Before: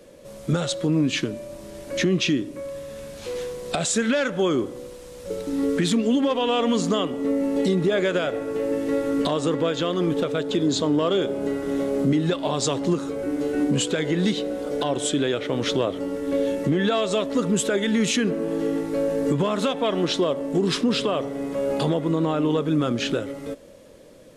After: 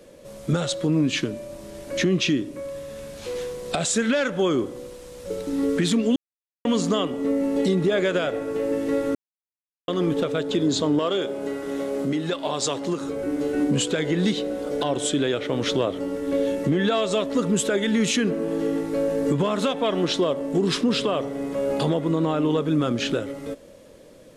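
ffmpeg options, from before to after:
-filter_complex "[0:a]asettb=1/sr,asplit=3[a][b][c];[a]atrim=end=10.994[d];[b]atrim=start=10.99:end=13.01,asetpts=PTS-STARTPTS,afade=t=in:d=0.004:c=qsin,afade=t=out:st=2.016:d=0.004:c=qsin,lowshelf=f=250:g=-10[e];[c]atrim=start=13.006[f];[d][e]acrossfade=d=0.004:c1=hsin:c2=qsin[g];[g][f]acrossfade=d=0.004:c1=qsin:c2=hsin,asplit=5[h][i][j][k][l];[h]atrim=end=6.16,asetpts=PTS-STARTPTS,afade=t=out:st=6.156:d=0.004:c=hsin[m];[i]atrim=start=6.16:end=6.65,asetpts=PTS-STARTPTS,volume=0[n];[j]atrim=start=6.65:end=9.15,asetpts=PTS-STARTPTS,afade=t=in:d=0.004:c=hsin,afade=t=out:st=2.496:d=0.004:c=hsin[o];[k]atrim=start=9.15:end=9.88,asetpts=PTS-STARTPTS,volume=0[p];[l]atrim=start=9.88,asetpts=PTS-STARTPTS,afade=t=in:d=0.004:c=hsin[q];[m][n][o][p][q]concat=n=5:v=0:a=1"

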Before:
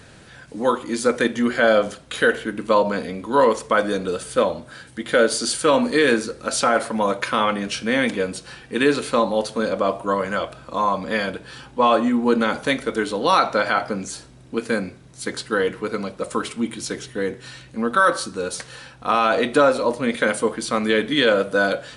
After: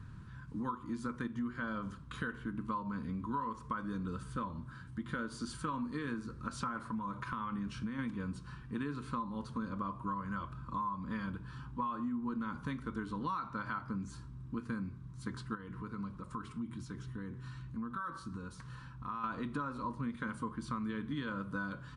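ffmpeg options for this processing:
-filter_complex "[0:a]asplit=3[a][b][c];[a]afade=t=out:st=6.89:d=0.02[d];[b]acompressor=threshold=-23dB:ratio=4:attack=3.2:release=140:knee=1:detection=peak,afade=t=in:st=6.89:d=0.02,afade=t=out:st=7.98:d=0.02[e];[c]afade=t=in:st=7.98:d=0.02[f];[d][e][f]amix=inputs=3:normalize=0,asettb=1/sr,asplit=3[g][h][i];[g]atrim=end=15.554[j];[h]atrim=start=15.55:end=19.24,asetpts=PTS-STARTPTS,afade=t=in:d=0.004:c=qsin,afade=t=out:st=3.686:d=0.004:c=qsin,acompressor=threshold=-34dB:ratio=2:attack=3.2:release=140:knee=1:detection=peak[k];[i]atrim=start=19.236[l];[j][k]acrossfade=d=0.004:c1=hsin:c2=qsin[m];[m][l]acrossfade=d=0.004:c1=qsin:c2=hsin,firequalizer=gain_entry='entry(120,0);entry(500,-26);entry(720,-30);entry(1000,-6);entry(2000,-22);entry(10000,-27)':delay=0.05:min_phase=1,acompressor=threshold=-37dB:ratio=6,volume=2dB"

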